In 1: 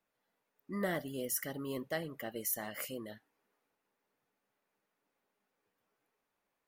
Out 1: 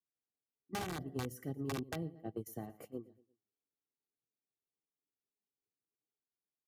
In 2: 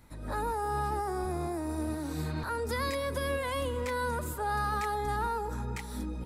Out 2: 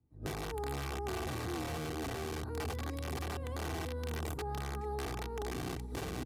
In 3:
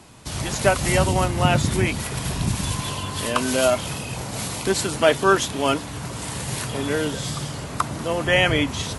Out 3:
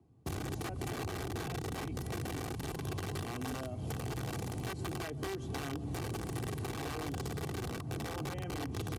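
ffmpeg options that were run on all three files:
-filter_complex "[0:a]bandreject=f=3.6k:w=26,agate=range=-27dB:threshold=-39dB:ratio=16:detection=peak,asplit=2[a][b];[b]aecho=0:1:115|230|345:0.0794|0.031|0.0121[c];[a][c]amix=inputs=2:normalize=0,acompressor=threshold=-34dB:ratio=10,firequalizer=gain_entry='entry(170,0);entry(1500,-20);entry(5300,-21)':delay=0.05:min_phase=1,aeval=exprs='(mod(59.6*val(0)+1,2)-1)/59.6':c=same,bass=f=250:g=8,treble=f=4k:g=-3,aresample=32000,aresample=44100,acrossover=split=170|3200[d][e][f];[d]acompressor=threshold=-45dB:ratio=4[g];[e]acompressor=threshold=-49dB:ratio=4[h];[f]acompressor=threshold=-55dB:ratio=4[i];[g][h][i]amix=inputs=3:normalize=0,asoftclip=type=tanh:threshold=-35dB,highpass=100,aecho=1:1:2.6:0.51,volume=9.5dB"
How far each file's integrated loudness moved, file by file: -4.5, -6.0, -17.0 LU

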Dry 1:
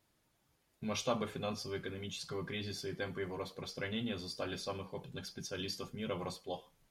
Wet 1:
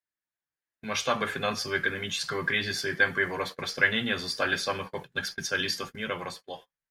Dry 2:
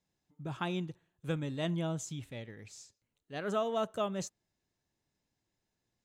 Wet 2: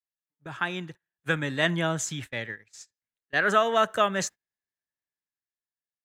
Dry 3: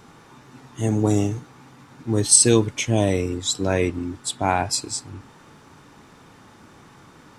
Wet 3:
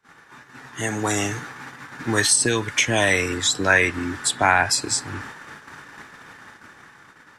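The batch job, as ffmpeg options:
-filter_complex "[0:a]lowshelf=f=430:g=-7.5,acrossover=split=150|810[a][b][c];[a]acompressor=threshold=-44dB:ratio=4[d];[b]acompressor=threshold=-36dB:ratio=4[e];[c]acompressor=threshold=-31dB:ratio=4[f];[d][e][f]amix=inputs=3:normalize=0,agate=range=-26dB:threshold=-50dB:ratio=16:detection=peak,equalizer=f=1.7k:t=o:w=0.64:g=12.5,dynaudnorm=f=120:g=17:m=9dB,volume=2.5dB"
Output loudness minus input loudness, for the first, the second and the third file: +12.0, +10.5, +0.5 LU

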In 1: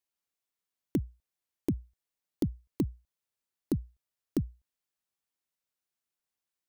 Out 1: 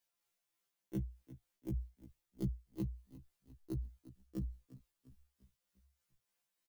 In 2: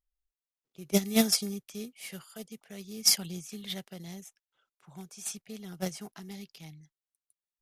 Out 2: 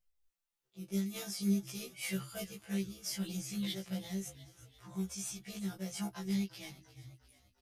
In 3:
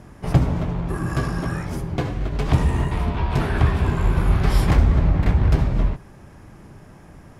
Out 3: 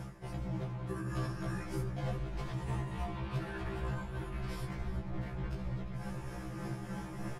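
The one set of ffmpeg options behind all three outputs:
-filter_complex "[0:a]aecho=1:1:5.8:0.92,areverse,acompressor=threshold=-30dB:ratio=6,areverse,alimiter=level_in=5.5dB:limit=-24dB:level=0:latency=1:release=100,volume=-5.5dB,flanger=delay=1.3:depth=9.1:regen=-50:speed=0.5:shape=sinusoidal,tremolo=f=3.3:d=0.34,asplit=2[a][b];[b]asplit=5[c][d][e][f][g];[c]adelay=350,afreqshift=-32,volume=-15.5dB[h];[d]adelay=700,afreqshift=-64,volume=-20.9dB[i];[e]adelay=1050,afreqshift=-96,volume=-26.2dB[j];[f]adelay=1400,afreqshift=-128,volume=-31.6dB[k];[g]adelay=1750,afreqshift=-160,volume=-36.9dB[l];[h][i][j][k][l]amix=inputs=5:normalize=0[m];[a][m]amix=inputs=2:normalize=0,afftfilt=real='re*1.73*eq(mod(b,3),0)':imag='im*1.73*eq(mod(b,3),0)':win_size=2048:overlap=0.75,volume=8.5dB"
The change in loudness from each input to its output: -8.5, -9.0, -18.0 LU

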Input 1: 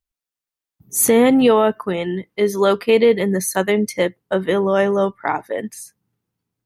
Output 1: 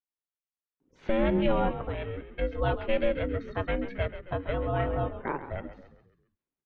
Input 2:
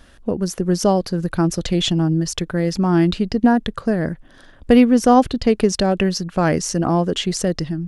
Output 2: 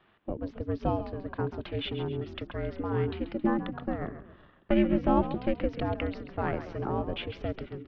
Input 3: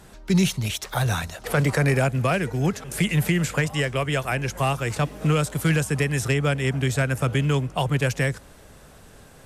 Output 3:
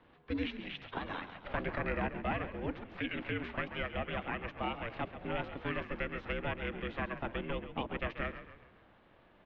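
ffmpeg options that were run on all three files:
-filter_complex "[0:a]highpass=f=210:t=q:w=0.5412,highpass=f=210:t=q:w=1.307,lowpass=f=3.4k:t=q:w=0.5176,lowpass=f=3.4k:t=q:w=0.7071,lowpass=f=3.4k:t=q:w=1.932,afreqshift=-180,aeval=exprs='val(0)*sin(2*PI*280*n/s)':c=same,asplit=6[a][b][c][d][e][f];[b]adelay=135,afreqshift=-45,volume=-11.5dB[g];[c]adelay=270,afreqshift=-90,volume=-18.2dB[h];[d]adelay=405,afreqshift=-135,volume=-25dB[i];[e]adelay=540,afreqshift=-180,volume=-31.7dB[j];[f]adelay=675,afreqshift=-225,volume=-38.5dB[k];[a][g][h][i][j][k]amix=inputs=6:normalize=0,volume=-8.5dB"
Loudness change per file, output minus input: -13.0, -13.5, -15.0 LU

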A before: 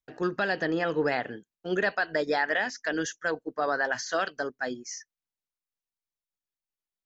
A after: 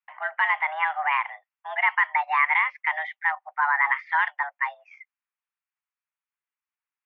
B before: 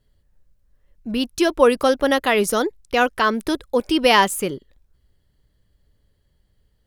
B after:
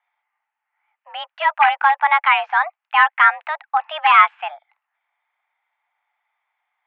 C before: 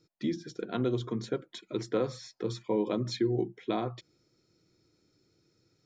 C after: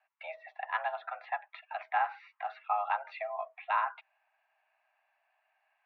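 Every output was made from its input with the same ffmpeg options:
-af "aeval=exprs='0.355*(abs(mod(val(0)/0.355+3,4)-2)-1)':c=same,highpass=f=570:t=q:w=0.5412,highpass=f=570:t=q:w=1.307,lowpass=f=2.4k:t=q:w=0.5176,lowpass=f=2.4k:t=q:w=0.7071,lowpass=f=2.4k:t=q:w=1.932,afreqshift=300,volume=6.5dB"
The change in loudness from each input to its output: +5.0, +3.0, -2.5 LU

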